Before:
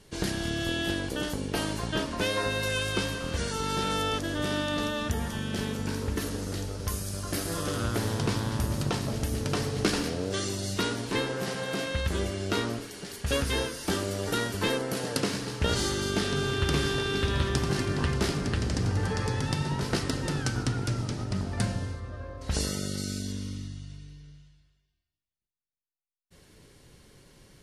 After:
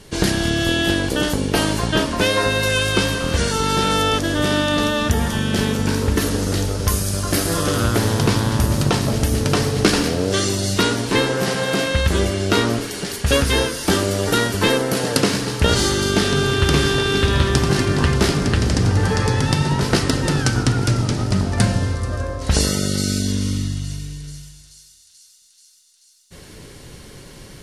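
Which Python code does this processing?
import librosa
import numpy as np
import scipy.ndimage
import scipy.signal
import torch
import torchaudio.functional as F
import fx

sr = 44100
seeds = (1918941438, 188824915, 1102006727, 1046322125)

p1 = fx.rider(x, sr, range_db=10, speed_s=0.5)
p2 = x + (p1 * 10.0 ** (-3.0 / 20.0))
p3 = fx.echo_wet_highpass(p2, sr, ms=434, feedback_pct=74, hz=5100.0, wet_db=-14)
y = p3 * 10.0 ** (6.5 / 20.0)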